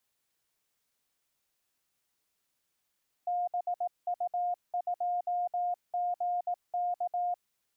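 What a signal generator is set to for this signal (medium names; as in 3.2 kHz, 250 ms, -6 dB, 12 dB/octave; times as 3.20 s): Morse "BU2GK" 18 wpm 710 Hz -28 dBFS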